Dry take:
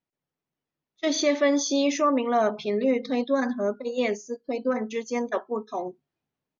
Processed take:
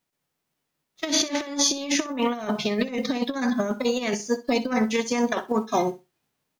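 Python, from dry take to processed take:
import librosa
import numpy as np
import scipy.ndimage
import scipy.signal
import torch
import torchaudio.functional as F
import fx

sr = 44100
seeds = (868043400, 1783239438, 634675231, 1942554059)

y = fx.envelope_flatten(x, sr, power=0.6)
y = fx.over_compress(y, sr, threshold_db=-28.0, ratio=-0.5)
y = fx.room_flutter(y, sr, wall_m=10.8, rt60_s=0.23)
y = y * librosa.db_to_amplitude(4.5)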